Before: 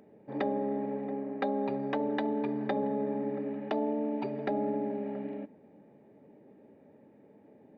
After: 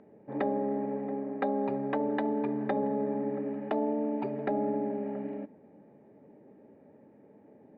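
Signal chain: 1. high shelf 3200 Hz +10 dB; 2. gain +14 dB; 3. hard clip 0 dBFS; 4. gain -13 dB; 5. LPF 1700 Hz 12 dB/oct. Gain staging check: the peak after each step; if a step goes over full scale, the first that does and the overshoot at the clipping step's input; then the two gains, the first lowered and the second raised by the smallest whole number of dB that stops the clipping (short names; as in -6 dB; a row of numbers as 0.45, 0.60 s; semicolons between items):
-16.5, -2.5, -2.5, -15.5, -18.0 dBFS; no overload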